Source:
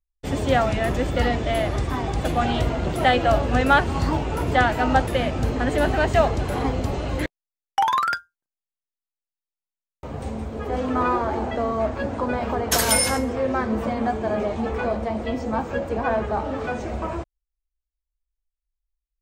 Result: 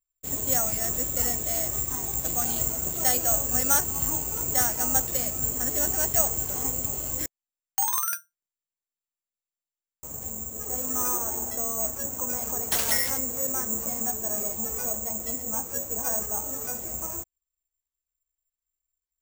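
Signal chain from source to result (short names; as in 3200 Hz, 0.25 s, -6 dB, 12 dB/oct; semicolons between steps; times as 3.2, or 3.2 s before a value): careless resampling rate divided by 6×, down none, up zero stuff; gain -13 dB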